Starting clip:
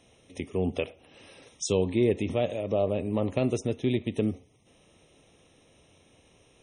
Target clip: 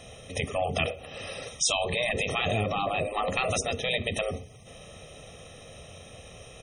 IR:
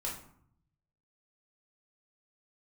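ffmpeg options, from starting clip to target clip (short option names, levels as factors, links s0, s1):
-filter_complex "[0:a]afftfilt=real='re*lt(hypot(re,im),0.1)':imag='im*lt(hypot(re,im),0.1)':win_size=1024:overlap=0.75,aecho=1:1:1.6:0.66,asplit=2[s0][s1];[s1]alimiter=level_in=2.24:limit=0.0631:level=0:latency=1:release=25,volume=0.447,volume=1.12[s2];[s0][s2]amix=inputs=2:normalize=0,volume=1.88"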